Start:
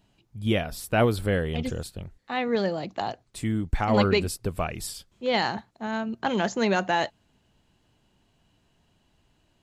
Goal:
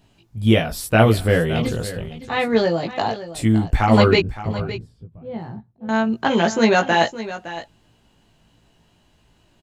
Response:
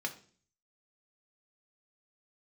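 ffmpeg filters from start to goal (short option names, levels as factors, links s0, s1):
-filter_complex "[0:a]asettb=1/sr,asplit=3[s0][s1][s2];[s0]atrim=end=4.204[s3];[s1]atrim=start=4.2:end=5.89,asetpts=PTS-STARTPTS,afade=t=in:d=0.004:c=qsin,afade=t=out:st=1.686:d=0.004:c=qsin,bandpass=f=120:t=q:w=1.5:csg=0[s4];[s2]atrim=start=5.886[s5];[s3][s4]acrossfade=d=0.004:c1=hsin:c2=qsin[s6];[s6][s5]acrossfade=d=0.004:c1=qsin:c2=hsin,asplit=2[s7][s8];[s8]adelay=18,volume=0.708[s9];[s7][s9]amix=inputs=2:normalize=0,aecho=1:1:563:0.2,volume=2"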